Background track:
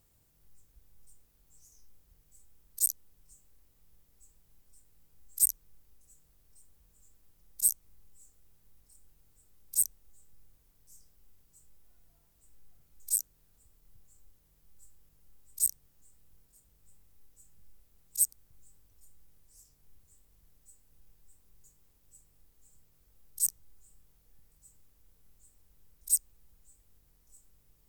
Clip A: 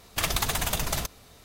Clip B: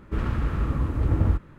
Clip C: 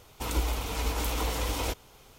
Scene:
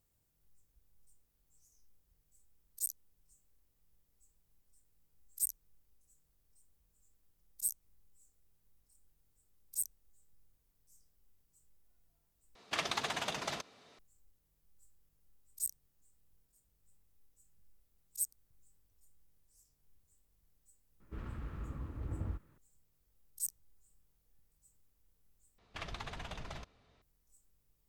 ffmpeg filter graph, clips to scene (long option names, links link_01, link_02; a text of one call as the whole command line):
ffmpeg -i bed.wav -i cue0.wav -i cue1.wav -filter_complex "[1:a]asplit=2[link_01][link_02];[0:a]volume=-9.5dB[link_03];[link_01]highpass=230,lowpass=4800[link_04];[link_02]lowpass=3400[link_05];[link_03]asplit=3[link_06][link_07][link_08];[link_06]atrim=end=12.554[link_09];[link_04]atrim=end=1.44,asetpts=PTS-STARTPTS,volume=-6dB[link_10];[link_07]atrim=start=13.986:end=25.584[link_11];[link_05]atrim=end=1.44,asetpts=PTS-STARTPTS,volume=-15dB[link_12];[link_08]atrim=start=27.016[link_13];[2:a]atrim=end=1.58,asetpts=PTS-STARTPTS,volume=-18dB,afade=type=in:duration=0.004:curve=hsin,afade=type=out:start_time=1.576:duration=0.004:curve=hsin,adelay=926100S[link_14];[link_09][link_10]acrossfade=duration=0.004:curve1=hsin:curve2=hsin[link_15];[link_15][link_11]acrossfade=duration=0.004:curve1=hsin:curve2=hsin[link_16];[link_16][link_12]acrossfade=duration=0.004:curve1=hsin:curve2=hsin[link_17];[link_17][link_13]acrossfade=duration=0.004:curve1=hsin:curve2=hsin[link_18];[link_18][link_14]amix=inputs=2:normalize=0" out.wav